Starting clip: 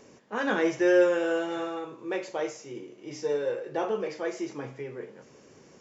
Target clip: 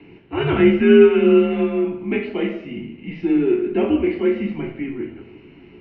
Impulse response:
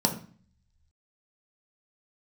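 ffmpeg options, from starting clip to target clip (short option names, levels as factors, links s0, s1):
-filter_complex "[0:a]crystalizer=i=3.5:c=0[s0];[1:a]atrim=start_sample=2205,asetrate=23814,aresample=44100[s1];[s0][s1]afir=irnorm=-1:irlink=0,highpass=f=210:t=q:w=0.5412,highpass=f=210:t=q:w=1.307,lowpass=f=3100:t=q:w=0.5176,lowpass=f=3100:t=q:w=0.7071,lowpass=f=3100:t=q:w=1.932,afreqshift=-130,volume=0.355"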